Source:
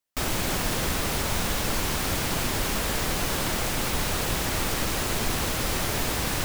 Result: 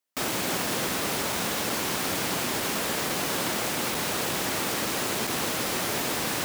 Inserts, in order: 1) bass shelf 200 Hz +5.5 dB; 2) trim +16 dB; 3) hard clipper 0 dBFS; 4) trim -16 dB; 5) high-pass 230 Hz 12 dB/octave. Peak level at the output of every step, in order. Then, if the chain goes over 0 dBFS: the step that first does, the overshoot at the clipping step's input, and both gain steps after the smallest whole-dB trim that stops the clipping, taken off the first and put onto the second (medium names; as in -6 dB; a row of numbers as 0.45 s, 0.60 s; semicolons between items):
-9.0 dBFS, +7.0 dBFS, 0.0 dBFS, -16.0 dBFS, -15.0 dBFS; step 2, 7.0 dB; step 2 +9 dB, step 4 -9 dB